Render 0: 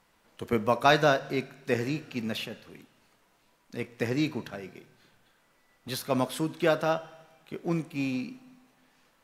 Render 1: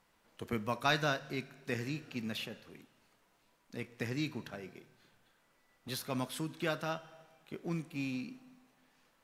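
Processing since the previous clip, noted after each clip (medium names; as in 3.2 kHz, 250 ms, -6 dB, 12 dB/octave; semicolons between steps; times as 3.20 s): dynamic bell 550 Hz, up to -8 dB, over -38 dBFS, Q 0.71; trim -5 dB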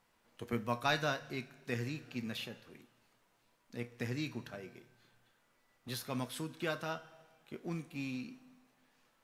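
feedback comb 120 Hz, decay 0.27 s, harmonics all, mix 60%; trim +3.5 dB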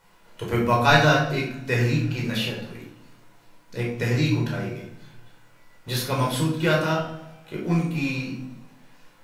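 simulated room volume 830 m³, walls furnished, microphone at 4.8 m; trim +9 dB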